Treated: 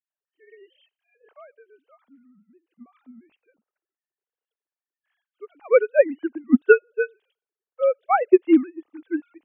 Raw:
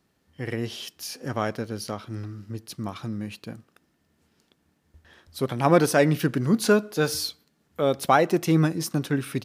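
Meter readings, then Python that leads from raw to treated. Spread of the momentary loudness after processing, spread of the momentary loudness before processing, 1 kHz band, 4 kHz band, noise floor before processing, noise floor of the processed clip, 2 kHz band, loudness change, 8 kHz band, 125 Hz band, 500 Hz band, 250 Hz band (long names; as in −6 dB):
14 LU, 16 LU, −1.5 dB, below −20 dB, −70 dBFS, below −85 dBFS, +2.0 dB, +4.5 dB, below −40 dB, below −20 dB, +4.0 dB, +1.0 dB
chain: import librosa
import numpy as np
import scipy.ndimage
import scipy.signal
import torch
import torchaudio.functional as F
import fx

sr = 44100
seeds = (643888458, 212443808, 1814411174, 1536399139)

y = fx.sine_speech(x, sr)
y = fx.hpss(y, sr, part='percussive', gain_db=-6)
y = fx.upward_expand(y, sr, threshold_db=-31.0, expansion=2.5)
y = F.gain(torch.from_numpy(y), 7.5).numpy()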